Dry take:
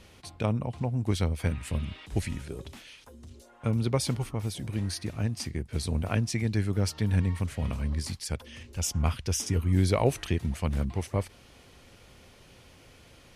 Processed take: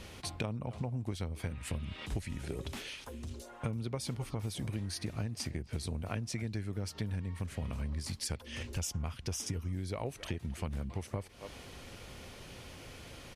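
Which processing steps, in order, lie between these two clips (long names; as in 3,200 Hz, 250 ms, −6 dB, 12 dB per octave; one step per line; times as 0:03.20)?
far-end echo of a speakerphone 270 ms, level −18 dB
downward compressor 16 to 1, threshold −38 dBFS, peak gain reduction 21 dB
level +5 dB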